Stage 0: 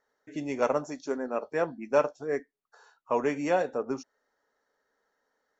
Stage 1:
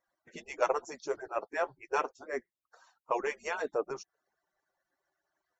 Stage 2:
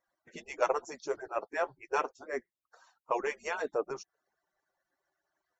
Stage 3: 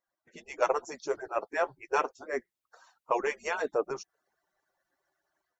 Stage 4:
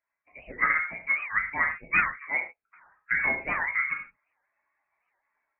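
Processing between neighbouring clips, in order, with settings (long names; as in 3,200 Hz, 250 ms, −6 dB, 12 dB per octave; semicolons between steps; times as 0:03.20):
harmonic-percussive split with one part muted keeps percussive
no processing that can be heard
automatic gain control gain up to 9 dB; level −6 dB
convolution reverb, pre-delay 3 ms, DRR −0.5 dB; voice inversion scrambler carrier 2,600 Hz; wow of a warped record 78 rpm, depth 250 cents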